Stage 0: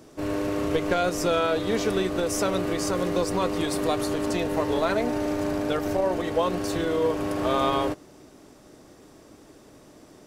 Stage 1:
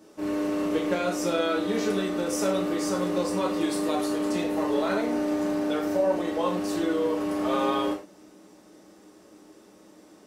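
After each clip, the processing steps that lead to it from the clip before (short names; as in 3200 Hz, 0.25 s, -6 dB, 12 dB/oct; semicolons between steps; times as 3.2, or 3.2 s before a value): resonant low shelf 170 Hz -9 dB, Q 1.5; reverb, pre-delay 3 ms, DRR -2.5 dB; gain -7 dB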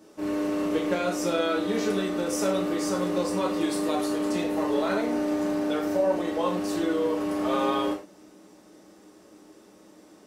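nothing audible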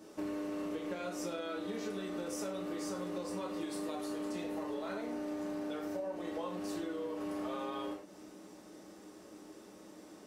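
compressor 12:1, threshold -35 dBFS, peak gain reduction 16.5 dB; gain -1 dB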